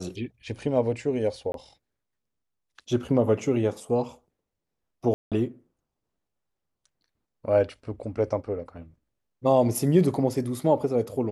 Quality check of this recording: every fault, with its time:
1.52–1.54 gap 22 ms
5.14–5.32 gap 0.177 s

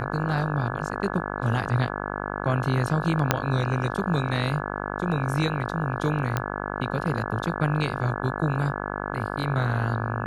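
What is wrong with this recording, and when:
buzz 50 Hz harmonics 34 -31 dBFS
3.31 pop -3 dBFS
6.37 pop -11 dBFS

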